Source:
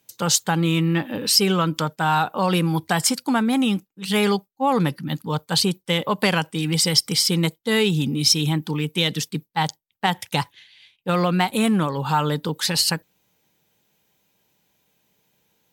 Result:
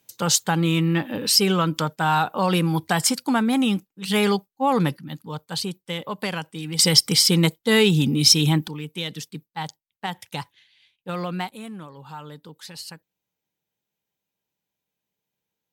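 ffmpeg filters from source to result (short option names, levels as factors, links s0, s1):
-af "asetnsamples=n=441:p=0,asendcmd='4.97 volume volume -8dB;6.79 volume volume 2.5dB;8.68 volume volume -8.5dB;11.49 volume volume -17.5dB',volume=0.944"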